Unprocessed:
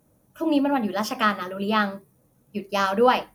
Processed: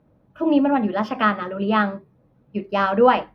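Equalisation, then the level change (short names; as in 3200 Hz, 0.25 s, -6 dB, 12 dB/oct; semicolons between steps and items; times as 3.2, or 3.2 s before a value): air absorption 350 m; +4.5 dB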